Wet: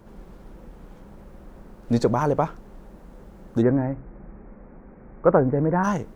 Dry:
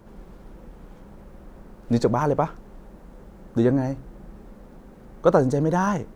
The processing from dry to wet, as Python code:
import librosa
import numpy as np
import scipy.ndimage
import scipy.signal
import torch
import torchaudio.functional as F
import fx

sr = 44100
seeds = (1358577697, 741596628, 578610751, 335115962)

y = fx.steep_lowpass(x, sr, hz=2400.0, slope=72, at=(3.61, 5.83), fade=0.02)